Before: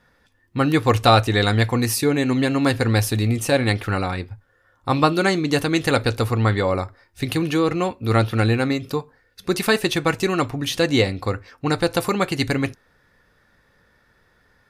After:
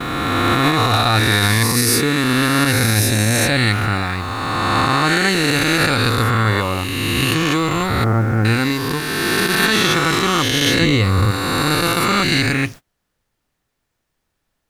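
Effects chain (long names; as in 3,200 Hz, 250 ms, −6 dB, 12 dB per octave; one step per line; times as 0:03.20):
peak hold with a rise ahead of every peak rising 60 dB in 2.92 s
0:08.04–0:08.45: Gaussian smoothing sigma 5.9 samples
0:10.81–0:11.31: low-shelf EQ 190 Hz +9.5 dB
brickwall limiter −5.5 dBFS, peak gain reduction 9 dB
parametric band 540 Hz −10 dB 1.2 octaves
background noise pink −47 dBFS
noise gate −34 dBFS, range −30 dB
level +3 dB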